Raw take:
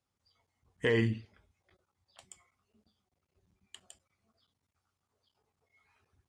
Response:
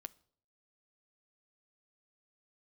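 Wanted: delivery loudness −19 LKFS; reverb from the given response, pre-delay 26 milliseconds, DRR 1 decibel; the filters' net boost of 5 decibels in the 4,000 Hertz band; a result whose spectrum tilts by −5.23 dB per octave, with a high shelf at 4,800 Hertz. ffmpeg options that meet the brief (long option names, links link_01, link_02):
-filter_complex "[0:a]equalizer=frequency=4000:width_type=o:gain=4,highshelf=frequency=4800:gain=8.5,asplit=2[link_01][link_02];[1:a]atrim=start_sample=2205,adelay=26[link_03];[link_02][link_03]afir=irnorm=-1:irlink=0,volume=4.5dB[link_04];[link_01][link_04]amix=inputs=2:normalize=0,volume=9dB"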